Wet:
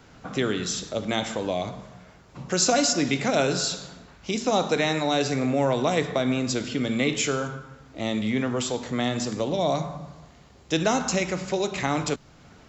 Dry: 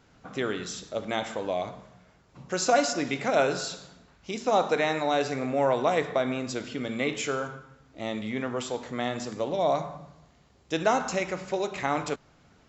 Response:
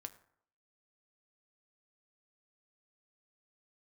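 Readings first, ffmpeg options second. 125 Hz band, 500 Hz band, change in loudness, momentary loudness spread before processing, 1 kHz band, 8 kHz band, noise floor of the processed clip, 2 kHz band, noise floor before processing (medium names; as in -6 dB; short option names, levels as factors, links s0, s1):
+8.0 dB, +1.0 dB, +3.0 dB, 13 LU, -0.5 dB, no reading, -52 dBFS, +2.0 dB, -60 dBFS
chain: -filter_complex "[0:a]acrossover=split=300|3000[s0][s1][s2];[s1]acompressor=threshold=0.00355:ratio=1.5[s3];[s0][s3][s2]amix=inputs=3:normalize=0,volume=2.66"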